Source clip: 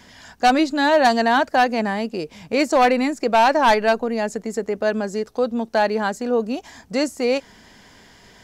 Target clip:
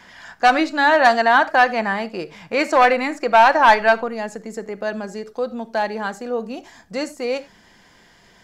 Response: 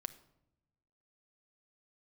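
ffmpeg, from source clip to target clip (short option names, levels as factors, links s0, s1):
-filter_complex "[0:a]asetnsamples=n=441:p=0,asendcmd='4.08 equalizer g 3',equalizer=f=1400:t=o:w=2.4:g=11[s0];[1:a]atrim=start_sample=2205,atrim=end_sample=4410[s1];[s0][s1]afir=irnorm=-1:irlink=0,volume=0.75"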